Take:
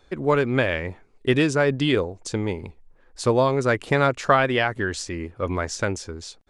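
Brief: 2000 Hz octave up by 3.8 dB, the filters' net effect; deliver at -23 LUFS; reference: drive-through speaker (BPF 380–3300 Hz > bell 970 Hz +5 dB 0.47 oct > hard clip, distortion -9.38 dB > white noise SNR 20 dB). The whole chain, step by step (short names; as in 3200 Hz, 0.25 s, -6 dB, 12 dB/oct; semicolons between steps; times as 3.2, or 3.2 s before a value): BPF 380–3300 Hz; bell 970 Hz +5 dB 0.47 oct; bell 2000 Hz +5 dB; hard clip -14.5 dBFS; white noise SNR 20 dB; gain +1.5 dB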